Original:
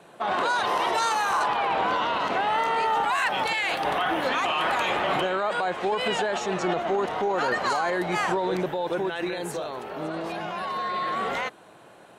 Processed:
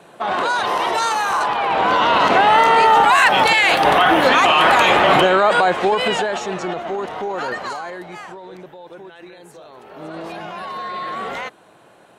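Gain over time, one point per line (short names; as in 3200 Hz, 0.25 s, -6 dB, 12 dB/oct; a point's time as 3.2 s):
1.6 s +5 dB
2.19 s +12 dB
5.58 s +12 dB
6.72 s +0.5 dB
7.49 s +0.5 dB
8.34 s -11 dB
9.54 s -11 dB
10.2 s +1 dB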